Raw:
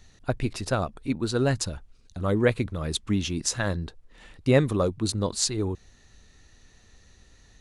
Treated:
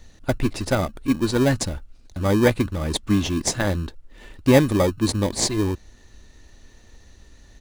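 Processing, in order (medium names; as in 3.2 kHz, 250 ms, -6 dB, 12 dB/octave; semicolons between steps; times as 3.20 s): comb 3.4 ms, depth 34%; in parallel at -5 dB: sample-and-hold 32×; on the sum: trim +2 dB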